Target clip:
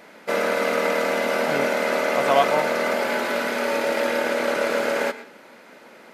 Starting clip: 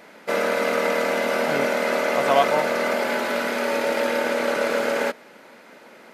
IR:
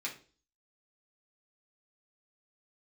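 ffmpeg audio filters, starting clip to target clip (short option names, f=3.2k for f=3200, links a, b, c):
-filter_complex "[0:a]asplit=2[a][b];[1:a]atrim=start_sample=2205,adelay=110[c];[b][c]afir=irnorm=-1:irlink=0,volume=-16dB[d];[a][d]amix=inputs=2:normalize=0"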